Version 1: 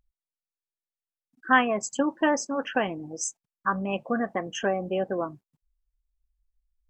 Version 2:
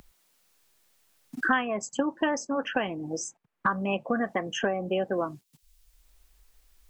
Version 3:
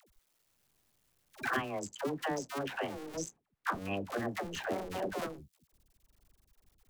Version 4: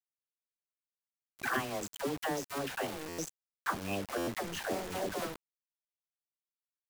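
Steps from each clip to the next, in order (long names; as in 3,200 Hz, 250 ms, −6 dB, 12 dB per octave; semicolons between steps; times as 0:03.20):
multiband upward and downward compressor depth 100%; level −1.5 dB
sub-harmonics by changed cycles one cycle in 2, muted; all-pass dispersion lows, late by 93 ms, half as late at 480 Hz; level −5 dB
bit reduction 7 bits; buffer that repeats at 0:03.08/0:04.17, samples 512, times 8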